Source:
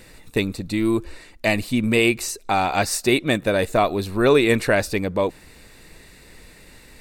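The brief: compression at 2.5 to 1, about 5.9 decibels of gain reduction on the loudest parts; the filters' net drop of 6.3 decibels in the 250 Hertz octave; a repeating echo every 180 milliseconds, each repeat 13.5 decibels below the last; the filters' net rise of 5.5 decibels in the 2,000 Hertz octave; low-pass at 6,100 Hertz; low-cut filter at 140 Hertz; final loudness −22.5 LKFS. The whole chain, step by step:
high-pass filter 140 Hz
low-pass filter 6,100 Hz
parametric band 250 Hz −8.5 dB
parametric band 2,000 Hz +7 dB
downward compressor 2.5 to 1, threshold −21 dBFS
repeating echo 180 ms, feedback 21%, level −13.5 dB
level +2 dB

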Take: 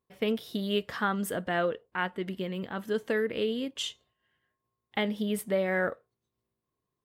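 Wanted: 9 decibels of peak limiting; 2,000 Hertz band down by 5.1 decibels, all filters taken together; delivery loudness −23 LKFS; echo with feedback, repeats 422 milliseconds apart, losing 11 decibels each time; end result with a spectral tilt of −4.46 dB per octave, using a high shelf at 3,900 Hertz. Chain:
parametric band 2,000 Hz −8.5 dB
high-shelf EQ 3,900 Hz +7.5 dB
brickwall limiter −25 dBFS
repeating echo 422 ms, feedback 28%, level −11 dB
level +12 dB

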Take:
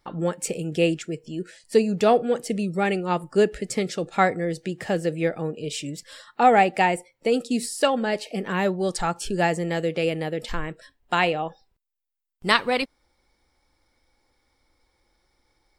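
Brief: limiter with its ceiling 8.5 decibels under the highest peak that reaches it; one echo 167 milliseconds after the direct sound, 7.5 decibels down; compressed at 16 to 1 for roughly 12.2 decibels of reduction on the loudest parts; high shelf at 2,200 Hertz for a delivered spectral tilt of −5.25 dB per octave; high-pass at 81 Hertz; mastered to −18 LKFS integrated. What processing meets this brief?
high-pass filter 81 Hz
high-shelf EQ 2,200 Hz −4.5 dB
downward compressor 16 to 1, threshold −25 dBFS
brickwall limiter −22 dBFS
single-tap delay 167 ms −7.5 dB
level +14.5 dB

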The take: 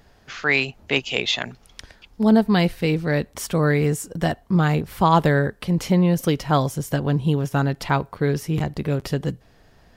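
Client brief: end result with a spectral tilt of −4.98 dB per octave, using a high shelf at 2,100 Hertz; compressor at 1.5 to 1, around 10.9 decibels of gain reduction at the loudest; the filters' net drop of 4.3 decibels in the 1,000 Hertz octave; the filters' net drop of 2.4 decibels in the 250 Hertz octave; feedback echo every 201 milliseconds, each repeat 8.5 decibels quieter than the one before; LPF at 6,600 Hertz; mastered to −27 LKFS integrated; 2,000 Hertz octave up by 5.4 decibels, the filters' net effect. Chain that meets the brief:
low-pass filter 6,600 Hz
parametric band 250 Hz −3.5 dB
parametric band 1,000 Hz −8 dB
parametric band 2,000 Hz +5.5 dB
high-shelf EQ 2,100 Hz +5.5 dB
downward compressor 1.5 to 1, threshold −41 dBFS
repeating echo 201 ms, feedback 38%, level −8.5 dB
level +2.5 dB

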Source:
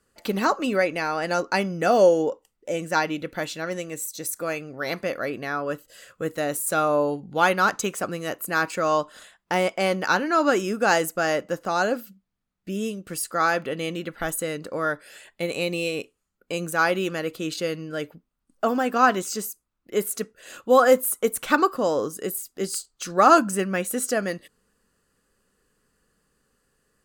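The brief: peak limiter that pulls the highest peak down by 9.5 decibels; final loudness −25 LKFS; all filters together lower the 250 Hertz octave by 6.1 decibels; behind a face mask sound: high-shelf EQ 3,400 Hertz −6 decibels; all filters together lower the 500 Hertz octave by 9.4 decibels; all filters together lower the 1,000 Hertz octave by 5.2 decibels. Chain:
parametric band 250 Hz −5 dB
parametric band 500 Hz −9 dB
parametric band 1,000 Hz −3.5 dB
brickwall limiter −17.5 dBFS
high-shelf EQ 3,400 Hz −6 dB
level +7 dB

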